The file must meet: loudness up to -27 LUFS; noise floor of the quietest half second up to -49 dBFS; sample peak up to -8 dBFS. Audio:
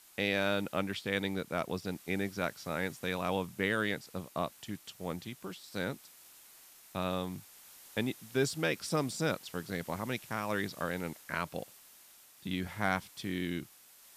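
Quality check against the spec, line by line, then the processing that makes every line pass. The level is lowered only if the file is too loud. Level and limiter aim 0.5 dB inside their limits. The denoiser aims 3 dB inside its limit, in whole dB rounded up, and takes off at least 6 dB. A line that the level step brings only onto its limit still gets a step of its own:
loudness -35.5 LUFS: pass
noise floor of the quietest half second -58 dBFS: pass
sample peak -16.0 dBFS: pass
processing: none needed

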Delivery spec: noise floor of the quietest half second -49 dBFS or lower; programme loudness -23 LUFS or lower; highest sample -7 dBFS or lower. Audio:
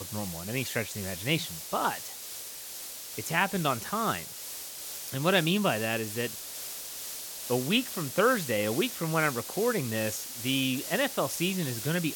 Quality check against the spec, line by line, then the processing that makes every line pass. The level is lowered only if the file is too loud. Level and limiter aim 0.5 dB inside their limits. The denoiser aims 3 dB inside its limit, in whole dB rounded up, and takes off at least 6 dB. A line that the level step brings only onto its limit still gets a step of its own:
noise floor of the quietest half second -41 dBFS: fail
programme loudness -30.0 LUFS: pass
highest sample -10.0 dBFS: pass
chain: noise reduction 11 dB, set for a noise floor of -41 dBFS

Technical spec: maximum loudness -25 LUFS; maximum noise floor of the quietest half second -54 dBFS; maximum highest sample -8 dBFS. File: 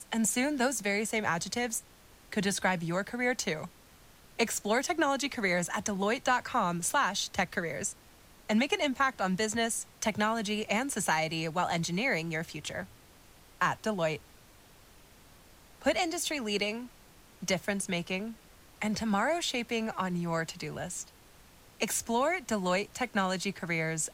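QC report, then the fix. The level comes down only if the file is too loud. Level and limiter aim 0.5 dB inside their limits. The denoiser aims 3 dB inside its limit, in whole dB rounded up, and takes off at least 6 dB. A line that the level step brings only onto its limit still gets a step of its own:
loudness -31.0 LUFS: pass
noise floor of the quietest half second -57 dBFS: pass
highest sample -13.5 dBFS: pass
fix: none needed

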